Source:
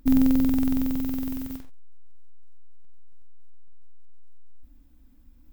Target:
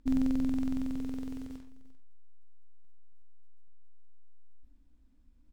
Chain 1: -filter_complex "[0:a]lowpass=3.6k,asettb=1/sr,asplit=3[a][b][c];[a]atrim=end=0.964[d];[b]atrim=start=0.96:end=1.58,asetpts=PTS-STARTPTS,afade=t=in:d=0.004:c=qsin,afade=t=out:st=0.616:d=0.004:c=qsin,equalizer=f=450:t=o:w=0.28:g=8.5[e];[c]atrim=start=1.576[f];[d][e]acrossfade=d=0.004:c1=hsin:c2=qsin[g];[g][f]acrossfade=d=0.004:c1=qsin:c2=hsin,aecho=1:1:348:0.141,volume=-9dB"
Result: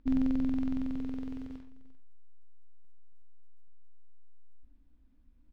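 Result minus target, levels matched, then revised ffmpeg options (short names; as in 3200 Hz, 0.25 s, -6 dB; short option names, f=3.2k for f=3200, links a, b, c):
8000 Hz band -11.0 dB
-filter_complex "[0:a]lowpass=8.1k,asettb=1/sr,asplit=3[a][b][c];[a]atrim=end=0.964[d];[b]atrim=start=0.96:end=1.58,asetpts=PTS-STARTPTS,afade=t=in:d=0.004:c=qsin,afade=t=out:st=0.616:d=0.004:c=qsin,equalizer=f=450:t=o:w=0.28:g=8.5[e];[c]atrim=start=1.576[f];[d][e]acrossfade=d=0.004:c1=hsin:c2=qsin[g];[g][f]acrossfade=d=0.004:c1=qsin:c2=hsin,aecho=1:1:348:0.141,volume=-9dB"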